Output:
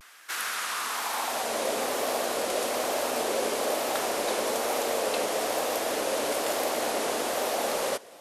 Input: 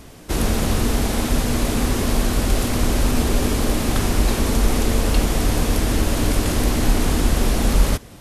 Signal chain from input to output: high-pass sweep 1400 Hz -> 570 Hz, 0.65–1.67; vibrato 1.1 Hz 88 cents; gain -5 dB

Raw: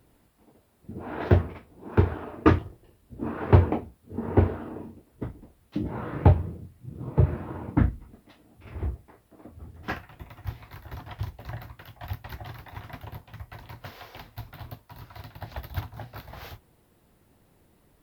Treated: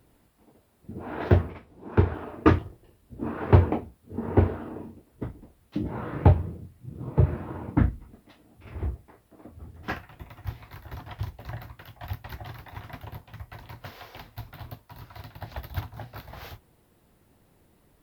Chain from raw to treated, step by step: 1.5–2.14 high shelf 9700 Hz -9.5 dB

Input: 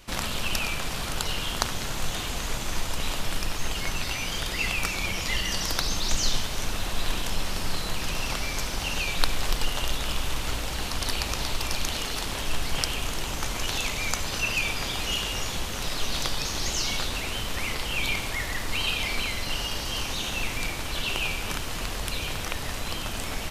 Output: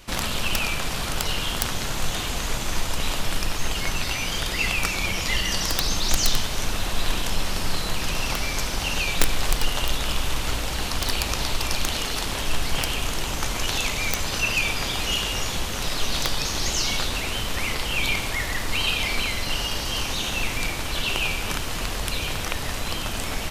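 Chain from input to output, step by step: wrapped overs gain 11.5 dB; gain +3.5 dB

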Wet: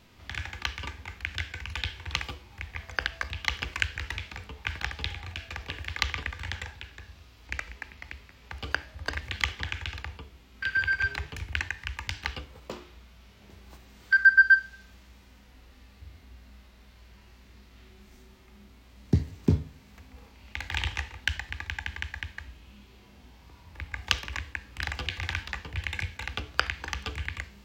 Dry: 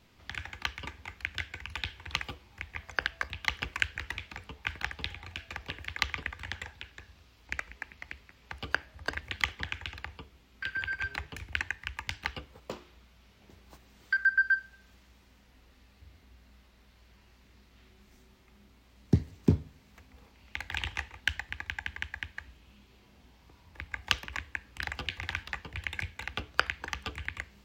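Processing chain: harmonic-percussive split harmonic +8 dB; dynamic EQ 5300 Hz, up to +4 dB, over -48 dBFS, Q 0.83

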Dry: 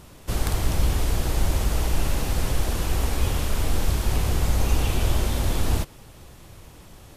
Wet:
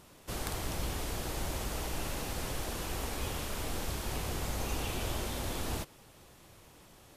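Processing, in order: low shelf 130 Hz -11 dB; gain -7 dB

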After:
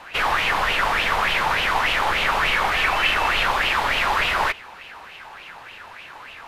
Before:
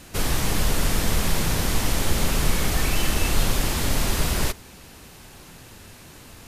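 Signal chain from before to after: three-band isolator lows -17 dB, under 510 Hz, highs -19 dB, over 3600 Hz; LFO bell 3.4 Hz 850–2900 Hz +14 dB; gain +5 dB

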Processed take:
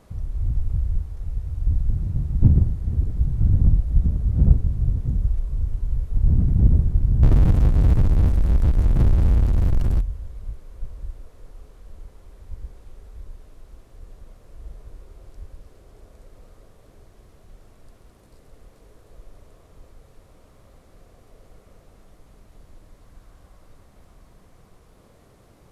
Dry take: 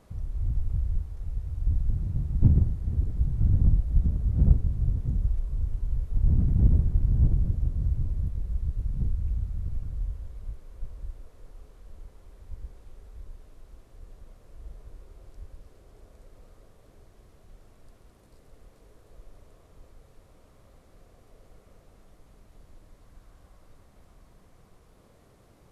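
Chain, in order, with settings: 7.23–10.01 power-law curve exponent 0.5; gain +4.5 dB

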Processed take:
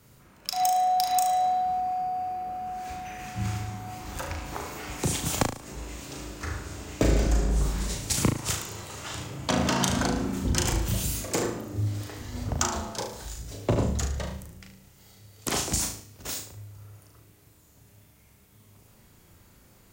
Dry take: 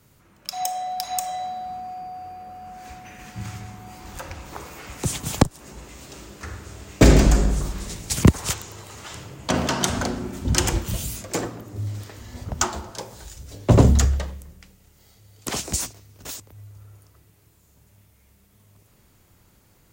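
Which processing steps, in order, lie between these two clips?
compressor 5:1, threshold -23 dBFS, peak gain reduction 14 dB; on a send: flutter echo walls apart 6.3 m, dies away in 0.44 s

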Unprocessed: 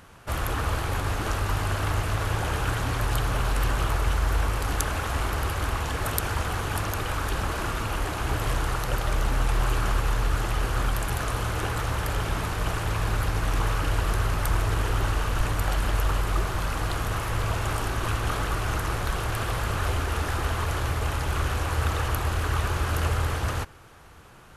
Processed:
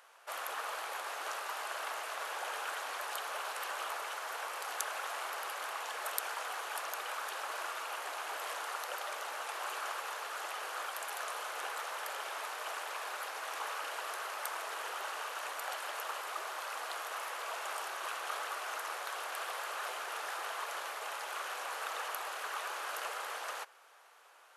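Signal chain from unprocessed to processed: inverse Chebyshev high-pass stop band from 160 Hz, stop band 60 dB; gain -7.5 dB

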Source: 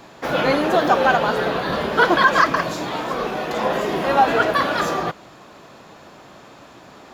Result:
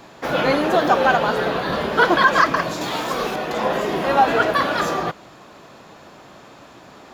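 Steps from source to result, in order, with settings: 2.81–3.36 high shelf 3700 Hz +10.5 dB

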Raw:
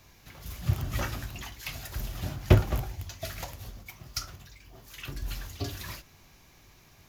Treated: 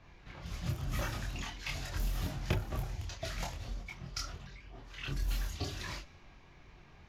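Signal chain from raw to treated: compressor 3:1, threshold -33 dBFS, peak gain reduction 15 dB; chorus voices 6, 0.46 Hz, delay 26 ms, depth 3.6 ms; low-pass opened by the level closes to 2400 Hz, open at -33.5 dBFS; gain +3.5 dB

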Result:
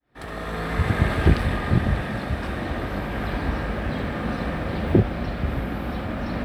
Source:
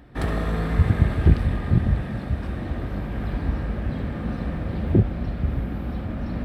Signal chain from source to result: opening faded in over 1.12 s; low shelf 320 Hz -12 dB; gain +9 dB

